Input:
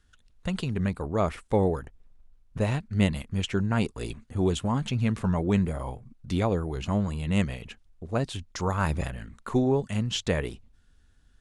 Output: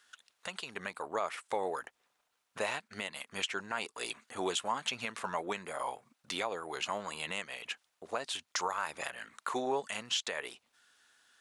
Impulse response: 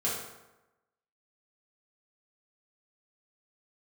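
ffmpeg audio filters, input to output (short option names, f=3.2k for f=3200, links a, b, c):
-filter_complex "[0:a]highpass=830,asplit=2[a][b];[b]acompressor=threshold=-44dB:ratio=6,volume=-1.5dB[c];[a][c]amix=inputs=2:normalize=0,alimiter=limit=-24dB:level=0:latency=1:release=316,volume=2.5dB"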